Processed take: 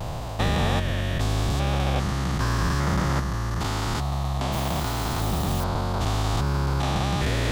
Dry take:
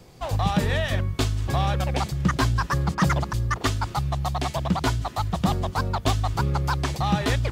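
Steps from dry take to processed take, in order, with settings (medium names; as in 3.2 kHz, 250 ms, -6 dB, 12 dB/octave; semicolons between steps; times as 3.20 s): spectrogram pixelated in time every 400 ms; vibrato 0.82 Hz 38 cents; 4.52–5.64 s: modulation noise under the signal 17 dB; harmonic-percussive split percussive +8 dB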